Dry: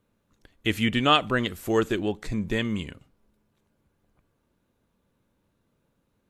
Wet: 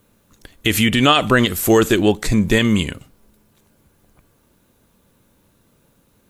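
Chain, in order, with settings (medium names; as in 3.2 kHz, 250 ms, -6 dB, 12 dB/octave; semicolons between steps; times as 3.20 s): treble shelf 5.9 kHz +11.5 dB; loudness maximiser +14.5 dB; trim -2 dB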